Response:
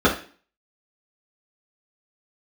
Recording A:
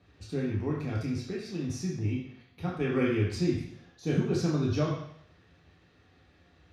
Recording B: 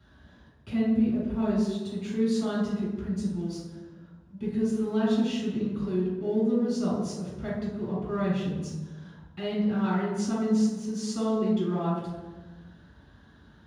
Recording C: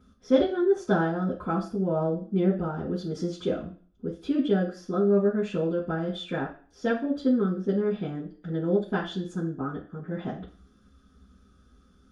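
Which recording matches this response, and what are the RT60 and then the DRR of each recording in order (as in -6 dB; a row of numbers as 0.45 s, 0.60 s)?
C; 0.70 s, 1.2 s, 0.40 s; -4.0 dB, -10.0 dB, -7.0 dB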